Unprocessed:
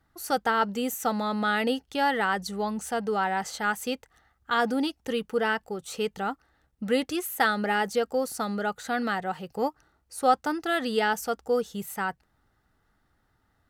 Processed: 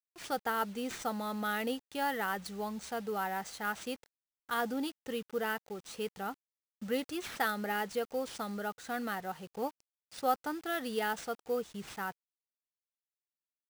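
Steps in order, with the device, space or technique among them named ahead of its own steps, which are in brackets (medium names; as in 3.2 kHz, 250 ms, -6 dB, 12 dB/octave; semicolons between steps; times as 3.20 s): early 8-bit sampler (sample-rate reducer 14 kHz, jitter 0%; bit crusher 8-bit); trim -8.5 dB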